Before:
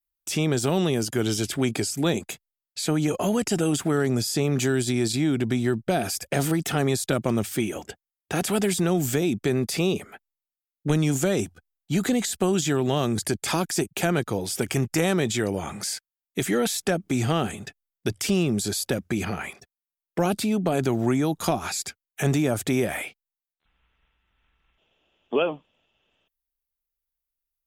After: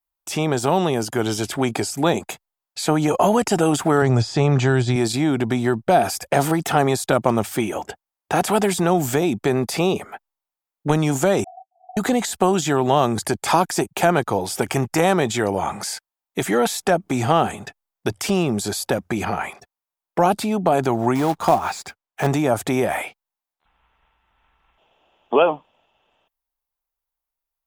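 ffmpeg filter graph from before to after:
ffmpeg -i in.wav -filter_complex "[0:a]asettb=1/sr,asplit=3[link_01][link_02][link_03];[link_01]atrim=end=4.024[link_04];[link_02]atrim=start=4.02:end=4.96,asetpts=PTS-STARTPTS,afade=type=in:duration=0.004:curve=qsin,afade=type=out:start_time=0.936:duration=0.004:curve=qsin,acrossover=split=5000[link_05][link_06];[link_06]acompressor=threshold=-40dB:ratio=4:attack=1:release=60[link_07];[link_05][link_07]amix=inputs=2:normalize=0,lowpass=frequency=8200:width=0.5412,lowpass=frequency=8200:width=1.3066,lowshelf=frequency=160:width_type=q:width=1.5:gain=6.5[link_08];[link_03]atrim=start=4.956[link_09];[link_04][link_08]acrossfade=duration=0.004:curve1=hsin:curve2=qsin[link_10];[link_10][link_09]acrossfade=duration=0.004:curve1=qsin:curve2=hsin,asettb=1/sr,asplit=3[link_11][link_12][link_13];[link_11]atrim=end=11.444[link_14];[link_12]atrim=start=11.44:end=11.97,asetpts=PTS-STARTPTS,afade=type=in:duration=0.004:curve=qsin,afade=type=out:start_time=0.526:duration=0.004:curve=qsin,aeval=exprs='val(0)+0.5*0.0376*sgn(val(0))':channel_layout=same,asuperpass=centerf=720:order=8:qfactor=7.3,asplit=2[link_15][link_16];[link_16]adelay=12,volume=-4dB[link_17];[link_15][link_17]amix=inputs=2:normalize=0,atrim=end_sample=23373[link_18];[link_13]atrim=start=11.966[link_19];[link_14][link_18]acrossfade=duration=0.004:curve1=hsin:curve2=qsin[link_20];[link_20][link_19]acrossfade=duration=0.004:curve1=qsin:curve2=hsin,asettb=1/sr,asplit=3[link_21][link_22][link_23];[link_21]atrim=end=21.154[link_24];[link_22]atrim=start=21.15:end=22.27,asetpts=PTS-STARTPTS,afade=type=in:duration=0.004:curve=qsin,afade=type=out:start_time=1.116:duration=0.004:curve=qsin,highshelf=frequency=6000:gain=-11.5,acrusher=bits=3:mode=log:mix=0:aa=0.000001[link_25];[link_23]atrim=start=22.266[link_26];[link_24][link_25]acrossfade=duration=0.004:curve1=hsin:curve2=qsin[link_27];[link_27][link_26]acrossfade=duration=0.004:curve1=qsin:curve2=hsin,equalizer=frequency=870:width=1.1:gain=12.5,dynaudnorm=framelen=250:gausssize=17:maxgain=4dB" out.wav

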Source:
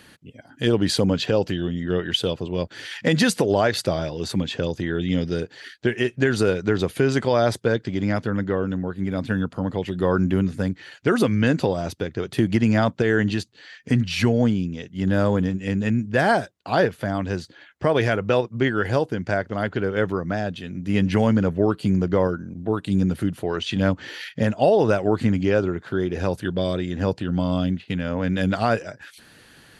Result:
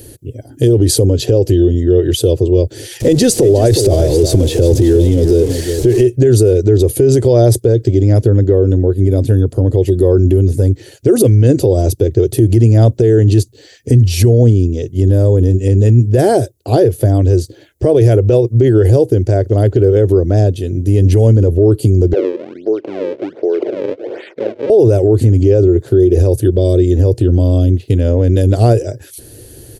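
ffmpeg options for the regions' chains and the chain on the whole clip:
ffmpeg -i in.wav -filter_complex "[0:a]asettb=1/sr,asplit=3[link_01][link_02][link_03];[link_01]atrim=end=3.004[link_04];[link_02]atrim=start=3:end=6.03,asetpts=PTS-STARTPTS,afade=type=in:duration=0.004:curve=qsin,afade=type=out:start_time=3.026:duration=0.004:curve=qsin,aeval=exprs='val(0)+0.5*0.0376*sgn(val(0))':channel_layout=same,lowpass=7100,aecho=1:1:363:0.266,atrim=end_sample=133623[link_05];[link_03]atrim=start=6.026[link_06];[link_04][link_05]acrossfade=duration=0.004:curve1=hsin:curve2=qsin[link_07];[link_07][link_06]acrossfade=duration=0.004:curve1=qsin:curve2=hsin,asettb=1/sr,asplit=3[link_08][link_09][link_10];[link_08]atrim=end=22.134[link_11];[link_09]atrim=start=22.13:end=24.7,asetpts=PTS-STARTPTS,afade=type=in:duration=0.004:curve=qsin,afade=type=out:start_time=2.566:duration=0.004:curve=qsin,acompressor=threshold=-30dB:ratio=2:attack=3.2:release=140:knee=1:detection=peak,acrusher=samples=35:mix=1:aa=0.000001:lfo=1:lforange=56:lforate=1.3,highpass=frequency=270:width=0.5412,highpass=frequency=270:width=1.3066,equalizer=frequency=280:width_type=q:width=4:gain=-4,equalizer=frequency=560:width_type=q:width=4:gain=4,equalizer=frequency=1500:width_type=q:width=4:gain=6,equalizer=frequency=2200:width_type=q:width=4:gain=5,lowpass=frequency=3200:width=0.5412,lowpass=frequency=3200:width=1.3066[link_12];[link_10]atrim=start=24.696[link_13];[link_11][link_12]acrossfade=duration=0.004:curve1=hsin:curve2=qsin[link_14];[link_14][link_13]acrossfade=duration=0.004:curve1=qsin:curve2=hsin,firequalizer=gain_entry='entry(120,0);entry(170,-21);entry(360,-1);entry(880,-23);entry(1200,-29);entry(6000,-10);entry(11000,0)':delay=0.05:min_phase=1,alimiter=level_in=23.5dB:limit=-1dB:release=50:level=0:latency=1,volume=-1dB" out.wav

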